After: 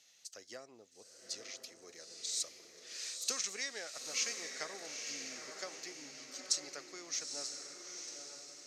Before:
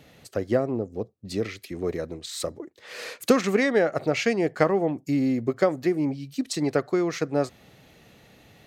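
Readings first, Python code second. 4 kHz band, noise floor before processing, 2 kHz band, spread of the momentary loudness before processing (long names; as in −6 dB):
−2.0 dB, −56 dBFS, −14.0 dB, 12 LU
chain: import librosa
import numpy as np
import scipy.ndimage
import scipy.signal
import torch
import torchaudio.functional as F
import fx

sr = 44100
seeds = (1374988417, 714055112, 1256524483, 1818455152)

y = fx.bandpass_q(x, sr, hz=6100.0, q=3.1)
y = fx.echo_diffused(y, sr, ms=901, feedback_pct=44, wet_db=-5.0)
y = y * 10.0 ** (4.0 / 20.0)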